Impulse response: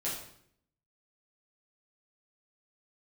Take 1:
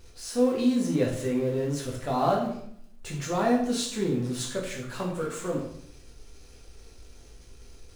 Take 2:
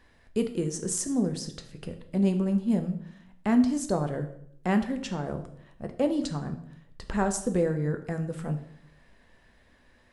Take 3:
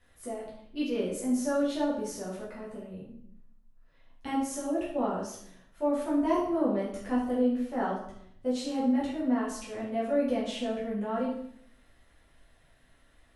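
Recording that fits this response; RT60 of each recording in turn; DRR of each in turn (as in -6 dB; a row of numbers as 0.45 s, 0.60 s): 3; 0.65 s, 0.65 s, 0.65 s; -2.5 dB, 6.5 dB, -8.0 dB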